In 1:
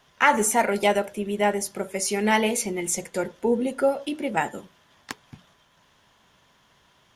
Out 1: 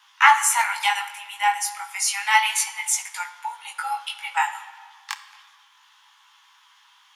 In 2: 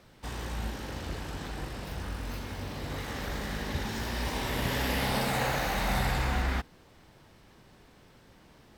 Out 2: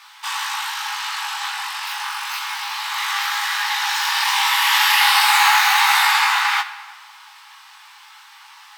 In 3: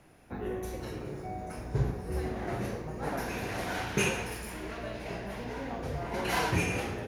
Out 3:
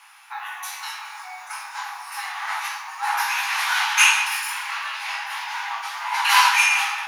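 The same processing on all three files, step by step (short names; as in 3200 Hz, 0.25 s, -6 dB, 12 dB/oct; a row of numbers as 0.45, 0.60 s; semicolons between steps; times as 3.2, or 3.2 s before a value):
rippled Chebyshev high-pass 820 Hz, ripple 3 dB; chorus 0.31 Hz, delay 17 ms, depth 5.2 ms; shoebox room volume 2100 m³, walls mixed, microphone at 0.67 m; normalise peaks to -2 dBFS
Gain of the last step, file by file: +9.5, +22.5, +20.5 dB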